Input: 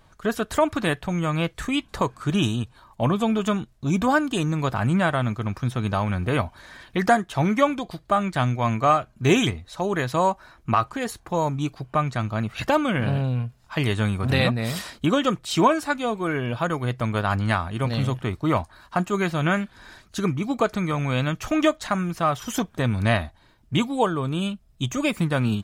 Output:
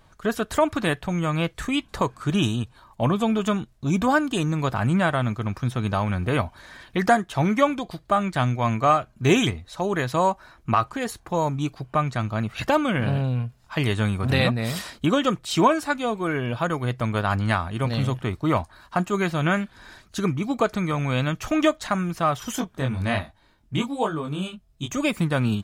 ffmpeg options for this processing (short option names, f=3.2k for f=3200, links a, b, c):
-filter_complex "[0:a]asplit=3[a][b][c];[a]afade=t=out:st=22.55:d=0.02[d];[b]flanger=delay=19:depth=4:speed=1.2,afade=t=in:st=22.55:d=0.02,afade=t=out:st=24.9:d=0.02[e];[c]afade=t=in:st=24.9:d=0.02[f];[d][e][f]amix=inputs=3:normalize=0"